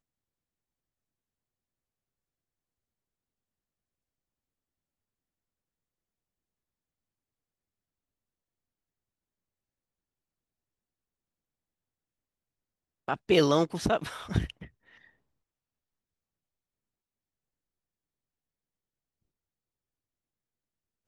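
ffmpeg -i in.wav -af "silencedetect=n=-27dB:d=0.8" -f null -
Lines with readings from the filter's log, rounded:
silence_start: 0.00
silence_end: 13.08 | silence_duration: 13.08
silence_start: 14.50
silence_end: 21.07 | silence_duration: 6.57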